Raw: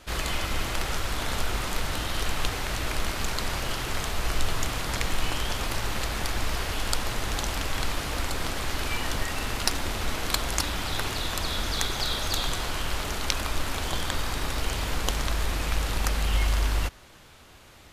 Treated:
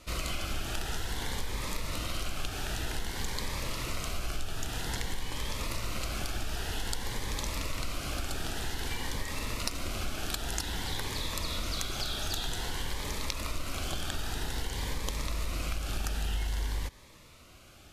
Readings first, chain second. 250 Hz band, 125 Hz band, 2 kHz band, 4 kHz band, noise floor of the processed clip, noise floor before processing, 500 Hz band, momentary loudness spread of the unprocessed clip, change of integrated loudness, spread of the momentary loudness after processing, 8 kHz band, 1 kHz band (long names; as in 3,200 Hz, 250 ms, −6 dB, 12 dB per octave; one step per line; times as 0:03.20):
−5.0 dB, −5.5 dB, −7.5 dB, −6.0 dB, −54 dBFS, −51 dBFS, −7.0 dB, 3 LU, −6.0 dB, 3 LU, −5.5 dB, −8.0 dB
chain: downsampling to 32,000 Hz
downward compressor, threshold −26 dBFS, peak gain reduction 9 dB
phaser whose notches keep moving one way rising 0.52 Hz
level −2 dB